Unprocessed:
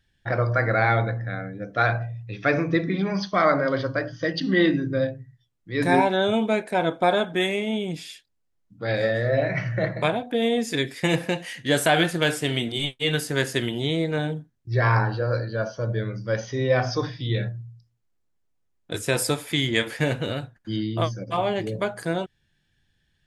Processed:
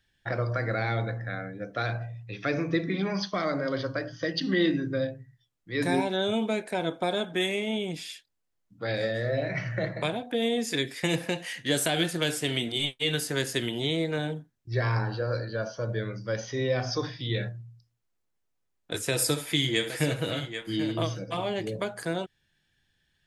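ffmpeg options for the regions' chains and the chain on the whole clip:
-filter_complex "[0:a]asettb=1/sr,asplit=3[a][b][c];[a]atrim=end=19.114[d];[b]atrim=start=19.11:end=21.45,asetpts=PTS-STARTPTS,afade=t=in:d=0.004:c=qsin,afade=t=out:st=2.336:d=0.004:c=qsin,aecho=1:1:6.3:0.4,atrim=end_sample=103194,aecho=1:1:68|785:0.188|0.224,atrim=end_sample=103194[e];[c]atrim=start=21.446[f];[d][e]acrossfade=d=0.004:c1=hsin:c2=qsin[g];[g][f]acrossfade=d=0.004:c1=qsin:c2=hsin,lowshelf=f=320:g=-6.5,acrossover=split=440|3000[h][i][j];[i]acompressor=threshold=-32dB:ratio=6[k];[h][k][j]amix=inputs=3:normalize=0"

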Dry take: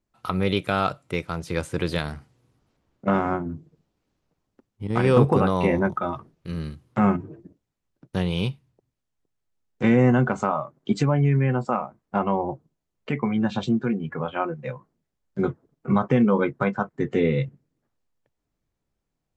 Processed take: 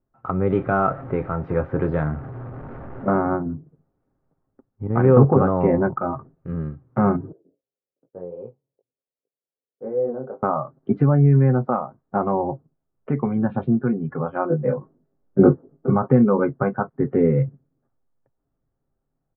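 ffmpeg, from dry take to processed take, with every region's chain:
-filter_complex "[0:a]asettb=1/sr,asplit=3[a][b][c];[a]atrim=end=0.504[d];[b]atrim=start=0.5:end=3.07,asetpts=PTS-STARTPTS,afade=t=in:d=0.004:c=qsin,afade=t=out:st=2.566:d=0.004:c=qsin,aeval=exprs='val(0)+0.5*0.0224*sgn(val(0))':c=same,asplit=2[e][f];[f]adelay=26,volume=-9dB[g];[e][g]amix=inputs=2:normalize=0,atrim=end_sample=113337[h];[c]atrim=start=3.066[i];[d][h]acrossfade=d=0.004:c1=hsin:c2=qsin[j];[j][i]acrossfade=d=0.004:c1=qsin:c2=hsin,asettb=1/sr,asplit=3[k][l][m];[k]atrim=end=7.324[n];[l]atrim=start=7.32:end=10.43,asetpts=PTS-STARTPTS,afade=t=in:d=0.004:c=qsin,afade=t=out:st=3.106:d=0.004:c=qsin,bandpass=f=490:t=q:w=4.3,flanger=delay=17.5:depth=5.2:speed=2.6[o];[m]atrim=start=10.426[p];[n][o]acrossfade=d=0.004:c1=hsin:c2=qsin[q];[q][p]acrossfade=d=0.004:c1=qsin:c2=hsin,asettb=1/sr,asplit=3[r][s][t];[r]atrim=end=14.504[u];[s]atrim=start=14.5:end=15.9,asetpts=PTS-STARTPTS,afade=t=in:d=0.004:c=qsin,afade=t=out:st=1.396:d=0.004:c=qsin,equalizer=f=340:w=0.59:g=10,asplit=2[v][w];[w]adelay=20,volume=-2.5dB[x];[v][x]amix=inputs=2:normalize=0,atrim=end_sample=61740[y];[t]atrim=start=15.896[z];[u][y]acrossfade=d=0.004:c1=hsin:c2=qsin[aa];[aa][z]acrossfade=d=0.004:c1=qsin:c2=hsin,lowpass=f=1.4k:w=0.5412,lowpass=f=1.4k:w=1.3066,bandreject=f=1k:w=9.5,aecho=1:1:7.5:0.32,volume=3dB"

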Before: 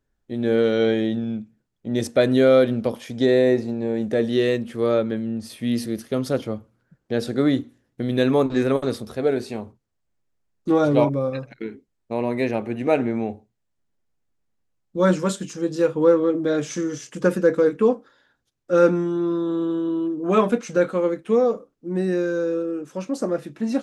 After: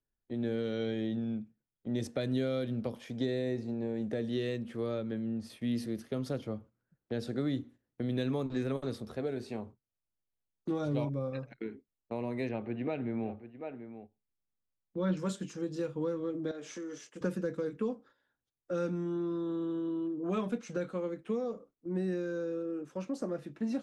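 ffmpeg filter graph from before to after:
-filter_complex "[0:a]asettb=1/sr,asplit=3[a][b][c];[a]atrim=end=12.494[d];[b]atrim=start=12.49:end=15.17,asetpts=PTS-STARTPTS,afade=t=in:d=0.004:c=qsin,afade=t=out:st=2.676:d=0.004:c=qsin,lowpass=f=4.1k:w=0.5412,lowpass=f=4.1k:w=1.3066,aecho=1:1:737:0.188,atrim=end_sample=118188[e];[c]atrim=start=15.166[f];[d][e]acrossfade=d=0.004:c1=hsin:c2=qsin[g];[g][f]acrossfade=d=0.004:c1=qsin:c2=hsin,asettb=1/sr,asplit=3[h][i][j];[h]atrim=end=16.514[k];[i]atrim=start=16.51:end=17.21,asetpts=PTS-STARTPTS,afade=t=in:d=0.004:c=qsin,afade=t=out:st=0.696:d=0.004:c=qsin,highpass=300,acompressor=threshold=-31dB:ratio=3:attack=3.2:release=140:knee=1:detection=peak[l];[j]atrim=start=17.206[m];[k][l]acrossfade=d=0.004:c1=hsin:c2=qsin[n];[n][m]acrossfade=d=0.004:c1=qsin:c2=hsin,agate=range=-8dB:threshold=-42dB:ratio=16:detection=peak,highshelf=f=4.7k:g=-9,acrossover=split=200|3000[o][p][q];[p]acompressor=threshold=-26dB:ratio=6[r];[o][r][q]amix=inputs=3:normalize=0,volume=-7.5dB"

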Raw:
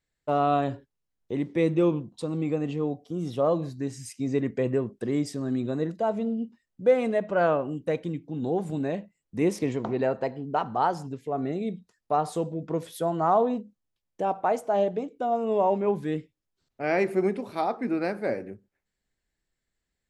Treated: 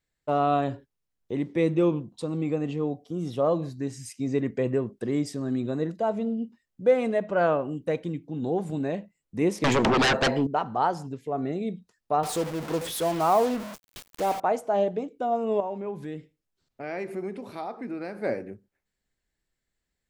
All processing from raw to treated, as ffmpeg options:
-filter_complex "[0:a]asettb=1/sr,asplit=3[a][b][c];[a]atrim=end=9.644[d];[b]atrim=start=9.64:end=10.47,asetpts=PTS-STARTPTS,afade=t=in:d=0.004:c=qsin,afade=t=out:st=0.826:d=0.004:c=qsin,lowshelf=f=370:g=-9,aeval=exprs='0.133*sin(PI/2*5.62*val(0)/0.133)':c=same[e];[c]atrim=start=10.466[f];[d][e]acrossfade=d=0.004:c1=hsin:c2=qsin[g];[g][f]acrossfade=d=0.004:c1=qsin:c2=hsin,asettb=1/sr,asplit=3[h][i][j];[h]atrim=end=12.234[k];[i]atrim=start=12.23:end=14.4,asetpts=PTS-STARTPTS,afade=t=in:d=0.004:c=qsin,afade=t=out:st=2.166:d=0.004:c=qsin,aeval=exprs='val(0)+0.5*0.0266*sgn(val(0))':c=same,highpass=f=210:p=1,acrusher=bits=5:mix=0:aa=0.5[l];[j]atrim=start=14.396[m];[k][l]acrossfade=d=0.004:c1=hsin:c2=qsin[n];[n][m]acrossfade=d=0.004:c1=qsin:c2=hsin,asettb=1/sr,asplit=3[o][p][q];[o]atrim=end=15.604[r];[p]atrim=start=15.6:end=18.22,asetpts=PTS-STARTPTS,afade=t=in:d=0.004:c=qsin,afade=t=out:st=2.616:d=0.004:c=qsin,acompressor=threshold=-36dB:ratio=2:attack=3.2:release=140:knee=1:detection=peak,aecho=1:1:76|152:0.0794|0.0183,atrim=end_sample=115542[s];[q]atrim=start=18.216[t];[r][s]acrossfade=d=0.004:c1=hsin:c2=qsin[u];[u][t]acrossfade=d=0.004:c1=qsin:c2=hsin"

